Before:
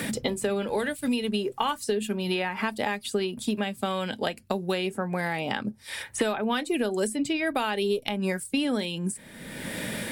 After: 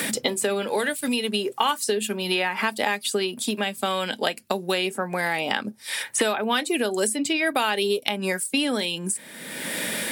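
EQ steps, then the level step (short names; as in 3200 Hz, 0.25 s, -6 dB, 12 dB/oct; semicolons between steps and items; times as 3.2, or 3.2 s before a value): HPF 190 Hz 12 dB/oct; tilt +1.5 dB/oct; +4.5 dB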